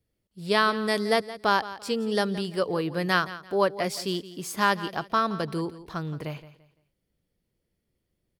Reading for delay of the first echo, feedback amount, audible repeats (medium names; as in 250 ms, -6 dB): 170 ms, 29%, 2